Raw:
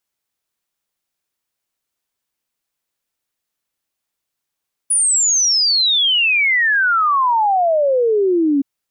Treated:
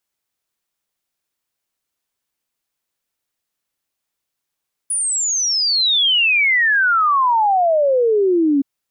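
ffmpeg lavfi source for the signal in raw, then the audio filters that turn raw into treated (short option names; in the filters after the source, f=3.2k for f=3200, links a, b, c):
-f lavfi -i "aevalsrc='0.251*clip(min(t,3.72-t)/0.01,0,1)*sin(2*PI*9900*3.72/log(270/9900)*(exp(log(270/9900)*t/3.72)-1))':d=3.72:s=44100"
-filter_complex "[0:a]acrossover=split=3600[a][b];[b]acompressor=threshold=-19dB:ratio=4:attack=1:release=60[c];[a][c]amix=inputs=2:normalize=0"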